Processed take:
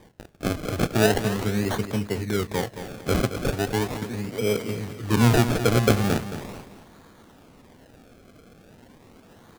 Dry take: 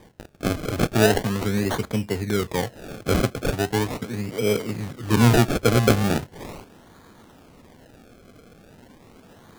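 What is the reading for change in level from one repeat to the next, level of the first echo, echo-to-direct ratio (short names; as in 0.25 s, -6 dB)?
-9.5 dB, -11.0 dB, -10.5 dB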